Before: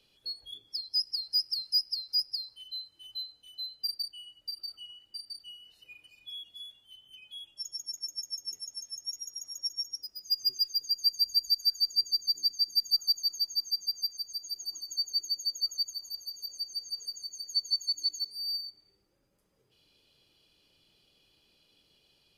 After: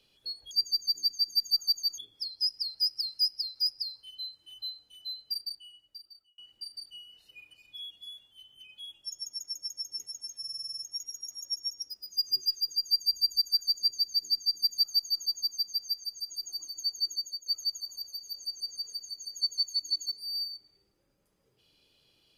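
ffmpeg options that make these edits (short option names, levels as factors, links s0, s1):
-filter_complex "[0:a]asplit=13[s0][s1][s2][s3][s4][s5][s6][s7][s8][s9][s10][s11][s12];[s0]atrim=end=0.512[s13];[s1]atrim=start=11.908:end=13.382[s14];[s2]atrim=start=0.508:end=4.91,asetpts=PTS-STARTPTS,afade=t=out:st=3.242:d=1.16[s15];[s3]atrim=start=4.91:end=8.972,asetpts=PTS-STARTPTS,afade=t=in:d=0.004:c=hsin[s16];[s4]atrim=start=8.918:end=8.972[s17];[s5]atrim=start=8.918:end=8.972[s18];[s6]atrim=start=8.918:end=8.972[s19];[s7]atrim=start=8.918:end=8.972[s20];[s8]atrim=start=8.918:end=8.972[s21];[s9]atrim=start=8.918:end=8.972[s22];[s10]atrim=start=8.918:end=8.972[s23];[s11]atrim=start=8.918:end=15.59,asetpts=PTS-STARTPTS,afade=t=out:st=6.332:d=0.34:silence=0.223872[s24];[s12]atrim=start=15.59,asetpts=PTS-STARTPTS,afade=t=in:d=0.004:c=hsin:silence=0.223872[s25];[s13][s14]acrossfade=d=0.004:c1=hsin:c2=hsin[s26];[s15][s16]concat=n=2:v=0:a=1[s27];[s26][s27]acrossfade=d=0.004:c1=hsin:c2=hsin[s28];[s28][s17]acrossfade=d=0.004:c1=hsin:c2=hsin[s29];[s29][s18]acrossfade=d=0.004:c1=hsin:c2=hsin[s30];[s30][s19]acrossfade=d=0.004:c1=hsin:c2=hsin[s31];[s31][s20]acrossfade=d=0.004:c1=hsin:c2=hsin[s32];[s32][s21]acrossfade=d=0.004:c1=hsin:c2=hsin[s33];[s33][s22]acrossfade=d=0.004:c1=hsin:c2=hsin[s34];[s34][s23]acrossfade=d=0.004:c1=hsin:c2=hsin[s35];[s24][s25]concat=n=2:v=0:a=1[s36];[s35][s36]acrossfade=d=0.004:c1=hsin:c2=hsin"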